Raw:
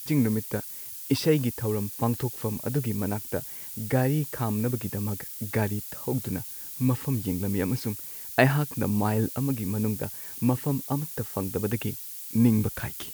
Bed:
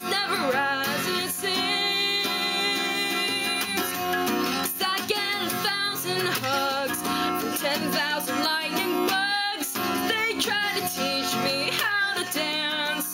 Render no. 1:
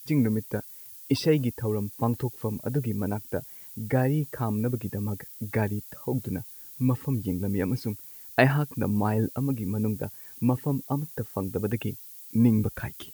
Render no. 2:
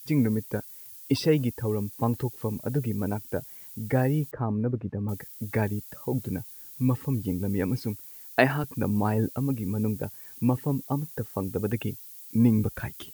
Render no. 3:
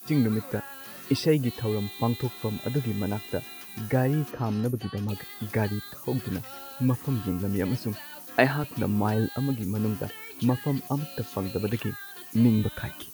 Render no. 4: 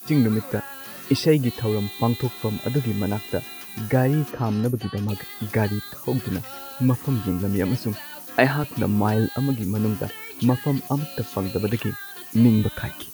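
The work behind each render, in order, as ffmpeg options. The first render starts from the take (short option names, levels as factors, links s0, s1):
-af "afftdn=nr=9:nf=-39"
-filter_complex "[0:a]asettb=1/sr,asplit=3[s0][s1][s2];[s0]atrim=end=4.314[s3];[s1]atrim=start=4.31:end=5.09,asetpts=PTS-STARTPTS,afade=t=in:d=0.004:c=qsin,afade=t=out:st=0.776:d=0.004:c=qsin,lowpass=1400[s4];[s2]atrim=start=5.086[s5];[s3][s4]acrossfade=d=0.004:c1=hsin:c2=qsin[s6];[s6][s5]acrossfade=d=0.004:c1=qsin:c2=hsin,asettb=1/sr,asplit=3[s7][s8][s9];[s7]atrim=end=8.024[s10];[s8]atrim=start=8.02:end=8.64,asetpts=PTS-STARTPTS,afade=t=in:d=0.004:c=qsin,afade=t=out:st=0.616:d=0.004:c=qsin,highpass=180[s11];[s9]atrim=start=8.636[s12];[s10][s11]acrossfade=d=0.004:c1=hsin:c2=qsin[s13];[s13][s12]acrossfade=d=0.004:c1=qsin:c2=hsin"
-filter_complex "[1:a]volume=0.112[s0];[0:a][s0]amix=inputs=2:normalize=0"
-af "volume=1.68,alimiter=limit=0.794:level=0:latency=1"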